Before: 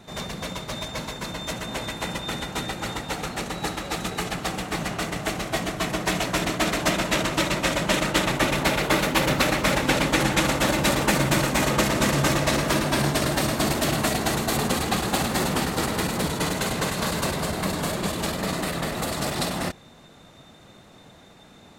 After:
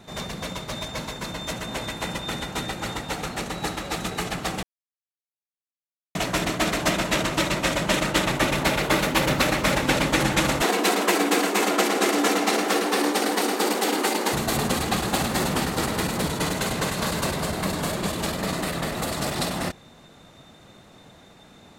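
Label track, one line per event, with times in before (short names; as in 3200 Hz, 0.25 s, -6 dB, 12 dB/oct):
4.630000	6.150000	mute
10.620000	14.330000	frequency shift +150 Hz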